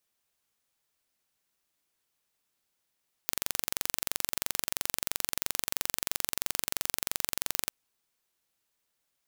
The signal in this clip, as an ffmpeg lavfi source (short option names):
-f lavfi -i "aevalsrc='0.841*eq(mod(n,1917),0)':d=4.4:s=44100"